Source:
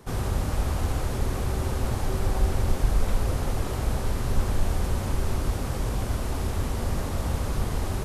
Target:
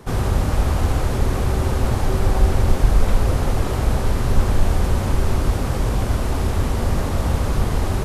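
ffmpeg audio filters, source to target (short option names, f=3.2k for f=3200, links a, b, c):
-af "highshelf=f=4.9k:g=-4.5,volume=7.5dB"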